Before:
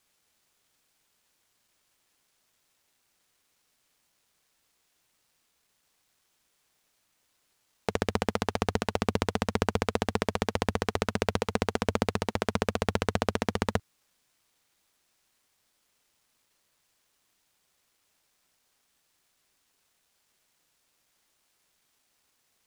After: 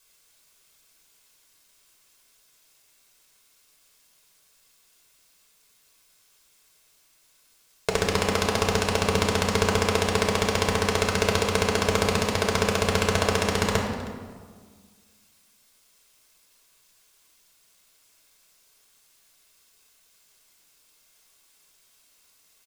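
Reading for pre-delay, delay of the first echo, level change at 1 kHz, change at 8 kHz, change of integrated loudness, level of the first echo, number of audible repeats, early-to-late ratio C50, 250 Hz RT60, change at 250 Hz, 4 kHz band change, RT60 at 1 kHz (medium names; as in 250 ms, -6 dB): 3 ms, 317 ms, +5.5 dB, +11.5 dB, +6.5 dB, -18.5 dB, 1, 4.0 dB, 2.1 s, +3.5 dB, +10.0 dB, 1.6 s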